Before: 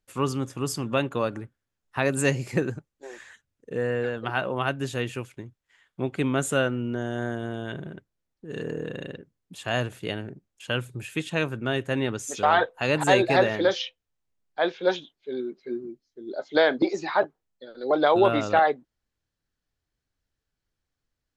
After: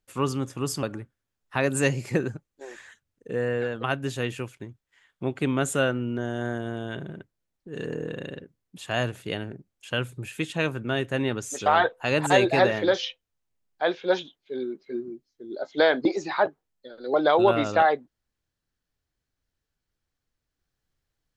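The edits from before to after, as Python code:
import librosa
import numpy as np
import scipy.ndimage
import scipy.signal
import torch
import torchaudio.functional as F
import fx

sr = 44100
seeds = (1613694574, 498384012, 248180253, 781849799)

y = fx.edit(x, sr, fx.cut(start_s=0.83, length_s=0.42),
    fx.cut(start_s=4.26, length_s=0.35), tone=tone)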